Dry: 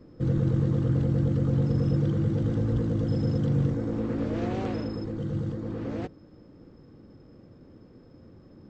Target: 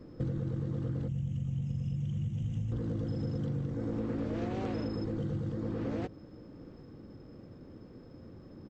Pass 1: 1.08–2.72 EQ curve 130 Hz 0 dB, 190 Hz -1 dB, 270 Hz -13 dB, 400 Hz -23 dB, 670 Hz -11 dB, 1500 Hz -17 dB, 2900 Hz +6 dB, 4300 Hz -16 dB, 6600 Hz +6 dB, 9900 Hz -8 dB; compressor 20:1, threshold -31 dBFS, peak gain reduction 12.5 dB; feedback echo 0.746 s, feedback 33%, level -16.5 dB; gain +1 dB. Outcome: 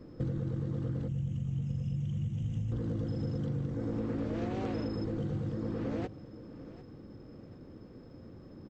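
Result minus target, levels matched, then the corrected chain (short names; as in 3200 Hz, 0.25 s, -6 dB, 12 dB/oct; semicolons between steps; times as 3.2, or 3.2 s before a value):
echo-to-direct +9 dB
1.08–2.72 EQ curve 130 Hz 0 dB, 190 Hz -1 dB, 270 Hz -13 dB, 400 Hz -23 dB, 670 Hz -11 dB, 1500 Hz -17 dB, 2900 Hz +6 dB, 4300 Hz -16 dB, 6600 Hz +6 dB, 9900 Hz -8 dB; compressor 20:1, threshold -31 dBFS, peak gain reduction 12.5 dB; feedback echo 0.746 s, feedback 33%, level -25.5 dB; gain +1 dB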